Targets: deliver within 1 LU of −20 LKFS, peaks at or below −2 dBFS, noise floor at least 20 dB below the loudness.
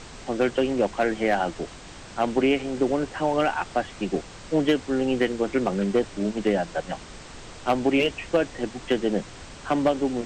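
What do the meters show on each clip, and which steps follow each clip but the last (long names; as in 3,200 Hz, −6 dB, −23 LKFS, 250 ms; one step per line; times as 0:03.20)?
share of clipped samples 0.4%; peaks flattened at −13.0 dBFS; background noise floor −43 dBFS; target noise floor −45 dBFS; integrated loudness −25.0 LKFS; sample peak −13.0 dBFS; target loudness −20.0 LKFS
→ clipped peaks rebuilt −13 dBFS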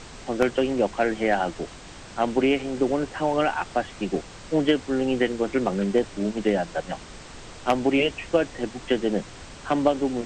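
share of clipped samples 0.0%; background noise floor −43 dBFS; target noise floor −45 dBFS
→ noise reduction from a noise print 6 dB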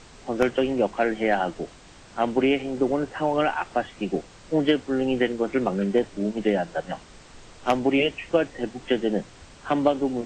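background noise floor −49 dBFS; integrated loudness −25.0 LKFS; sample peak −4.0 dBFS; target loudness −20.0 LKFS
→ level +5 dB
brickwall limiter −2 dBFS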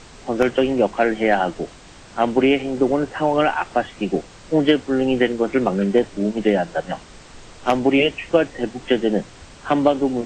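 integrated loudness −20.0 LKFS; sample peak −2.0 dBFS; background noise floor −44 dBFS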